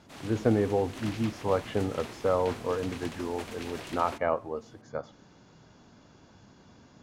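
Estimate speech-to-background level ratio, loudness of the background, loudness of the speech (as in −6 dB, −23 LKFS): 12.0 dB, −43.0 LKFS, −31.0 LKFS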